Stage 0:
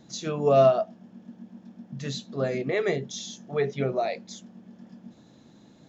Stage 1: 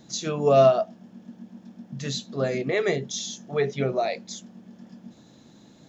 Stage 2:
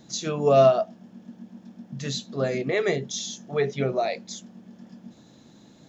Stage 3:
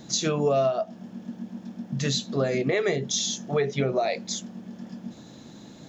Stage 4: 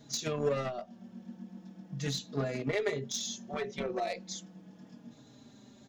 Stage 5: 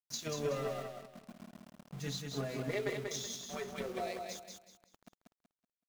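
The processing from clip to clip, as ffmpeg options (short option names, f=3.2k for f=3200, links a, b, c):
-af "highshelf=f=4k:g=6,volume=1.5dB"
-af anull
-af "acompressor=threshold=-28dB:ratio=5,volume=6.5dB"
-filter_complex "[0:a]asplit=2[a][b];[b]acrusher=bits=2:mix=0:aa=0.5,volume=-4dB[c];[a][c]amix=inputs=2:normalize=0,asplit=2[d][e];[e]adelay=4.4,afreqshift=-0.39[f];[d][f]amix=inputs=2:normalize=1,volume=-7dB"
-af "aeval=exprs='val(0)*gte(abs(val(0)),0.00794)':c=same,aecho=1:1:188|376|564|752:0.596|0.179|0.0536|0.0161,volume=-5.5dB"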